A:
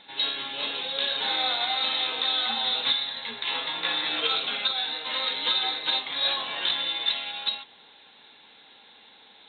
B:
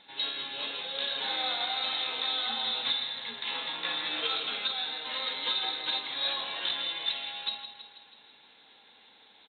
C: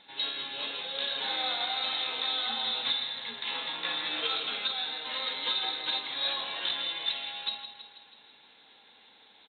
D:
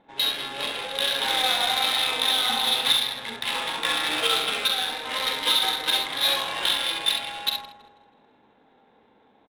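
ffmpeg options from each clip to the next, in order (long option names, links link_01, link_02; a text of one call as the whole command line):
ffmpeg -i in.wav -af "aecho=1:1:162|324|486|648|810|972|1134:0.299|0.17|0.097|0.0553|0.0315|0.018|0.0102,volume=-5.5dB" out.wav
ffmpeg -i in.wav -af anull out.wav
ffmpeg -i in.wav -af "acrusher=bits=4:mode=log:mix=0:aa=0.000001,adynamicsmooth=sensitivity=7:basefreq=720,aecho=1:1:43|67:0.398|0.473,volume=8dB" out.wav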